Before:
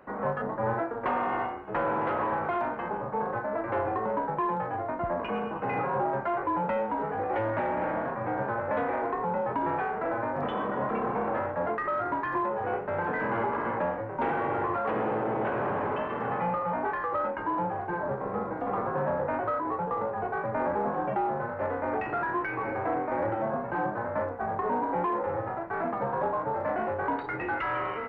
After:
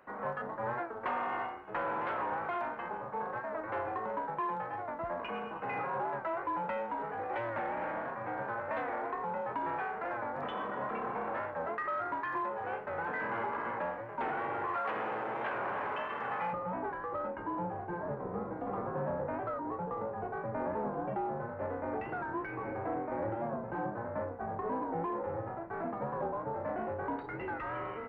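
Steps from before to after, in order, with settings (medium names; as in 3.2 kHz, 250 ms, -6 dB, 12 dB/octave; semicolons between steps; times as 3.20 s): tilt shelf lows -4.5 dB, about 680 Hz, from 14.67 s lows -8.5 dB, from 16.52 s lows +3.5 dB; warped record 45 rpm, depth 100 cents; trim -7 dB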